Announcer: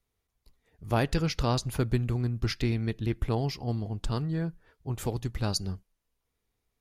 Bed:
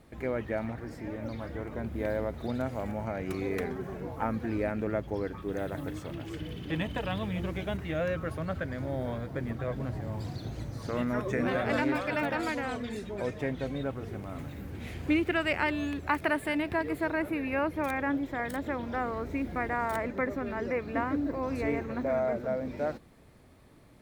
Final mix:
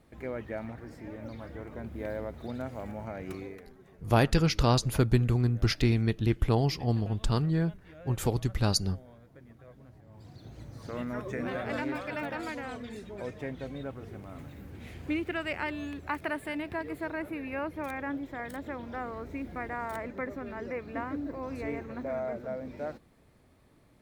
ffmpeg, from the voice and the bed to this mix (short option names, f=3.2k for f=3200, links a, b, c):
-filter_complex "[0:a]adelay=3200,volume=3dB[a];[1:a]volume=9.5dB,afade=t=out:st=3.32:d=0.29:silence=0.188365,afade=t=in:st=10.07:d=0.86:silence=0.199526[b];[a][b]amix=inputs=2:normalize=0"